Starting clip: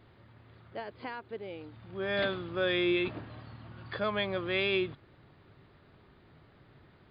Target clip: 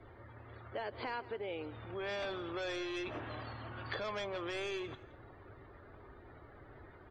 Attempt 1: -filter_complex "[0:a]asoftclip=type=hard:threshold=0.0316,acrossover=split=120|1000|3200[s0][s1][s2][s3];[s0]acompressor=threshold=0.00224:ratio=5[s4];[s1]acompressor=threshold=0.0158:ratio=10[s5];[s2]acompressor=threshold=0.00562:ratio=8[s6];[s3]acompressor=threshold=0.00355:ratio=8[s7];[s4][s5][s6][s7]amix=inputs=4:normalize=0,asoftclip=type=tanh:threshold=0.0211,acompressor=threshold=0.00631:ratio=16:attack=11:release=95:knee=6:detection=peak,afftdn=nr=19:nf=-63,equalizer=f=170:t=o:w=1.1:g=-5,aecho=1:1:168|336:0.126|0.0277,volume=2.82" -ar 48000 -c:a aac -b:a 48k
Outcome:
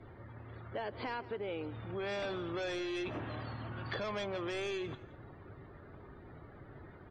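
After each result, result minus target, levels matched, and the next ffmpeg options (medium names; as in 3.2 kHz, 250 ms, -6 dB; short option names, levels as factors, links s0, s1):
saturation: distortion +10 dB; 125 Hz band +3.5 dB
-filter_complex "[0:a]asoftclip=type=hard:threshold=0.0316,acrossover=split=120|1000|3200[s0][s1][s2][s3];[s0]acompressor=threshold=0.00224:ratio=5[s4];[s1]acompressor=threshold=0.0158:ratio=10[s5];[s2]acompressor=threshold=0.00562:ratio=8[s6];[s3]acompressor=threshold=0.00355:ratio=8[s7];[s4][s5][s6][s7]amix=inputs=4:normalize=0,asoftclip=type=tanh:threshold=0.0447,acompressor=threshold=0.00631:ratio=16:attack=11:release=95:knee=6:detection=peak,afftdn=nr=19:nf=-63,equalizer=f=170:t=o:w=1.1:g=-5,aecho=1:1:168|336:0.126|0.0277,volume=2.82" -ar 48000 -c:a aac -b:a 48k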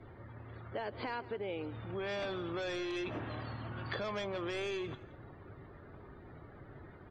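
125 Hz band +3.5 dB
-filter_complex "[0:a]asoftclip=type=hard:threshold=0.0316,acrossover=split=120|1000|3200[s0][s1][s2][s3];[s0]acompressor=threshold=0.00224:ratio=5[s4];[s1]acompressor=threshold=0.0158:ratio=10[s5];[s2]acompressor=threshold=0.00562:ratio=8[s6];[s3]acompressor=threshold=0.00355:ratio=8[s7];[s4][s5][s6][s7]amix=inputs=4:normalize=0,asoftclip=type=tanh:threshold=0.0447,acompressor=threshold=0.00631:ratio=16:attack=11:release=95:knee=6:detection=peak,afftdn=nr=19:nf=-63,equalizer=f=170:t=o:w=1.1:g=-15.5,aecho=1:1:168|336:0.126|0.0277,volume=2.82" -ar 48000 -c:a aac -b:a 48k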